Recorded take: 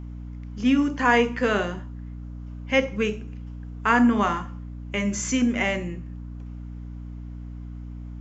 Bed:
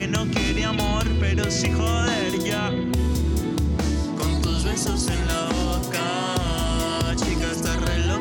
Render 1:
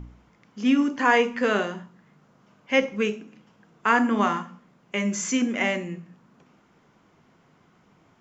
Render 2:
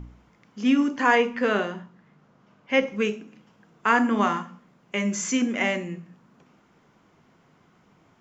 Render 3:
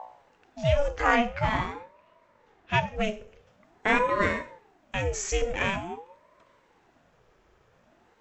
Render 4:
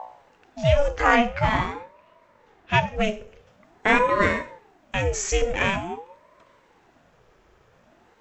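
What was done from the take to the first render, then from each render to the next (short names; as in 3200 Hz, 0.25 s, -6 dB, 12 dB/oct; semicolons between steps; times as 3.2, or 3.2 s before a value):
de-hum 60 Hz, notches 5
1.15–2.87 air absorption 77 m
ring modulator with a swept carrier 510 Hz, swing 60%, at 0.47 Hz
gain +4.5 dB; limiter -3 dBFS, peak gain reduction 1 dB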